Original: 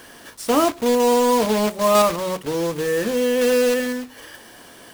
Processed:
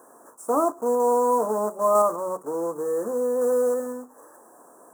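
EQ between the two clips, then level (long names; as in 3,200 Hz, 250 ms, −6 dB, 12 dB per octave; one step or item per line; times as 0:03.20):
high-pass filter 380 Hz 12 dB per octave
elliptic band-stop filter 1,200–7,500 Hz, stop band 50 dB
high-shelf EQ 8,200 Hz −9 dB
−1.5 dB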